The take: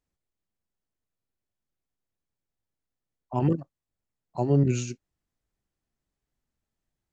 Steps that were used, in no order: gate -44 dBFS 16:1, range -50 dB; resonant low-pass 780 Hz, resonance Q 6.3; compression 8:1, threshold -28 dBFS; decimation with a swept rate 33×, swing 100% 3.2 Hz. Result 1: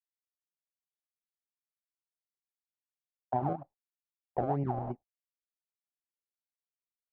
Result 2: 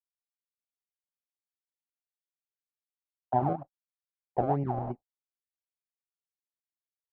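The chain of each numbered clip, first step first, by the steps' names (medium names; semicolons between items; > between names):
decimation with a swept rate > gate > resonant low-pass > compression; compression > gate > decimation with a swept rate > resonant low-pass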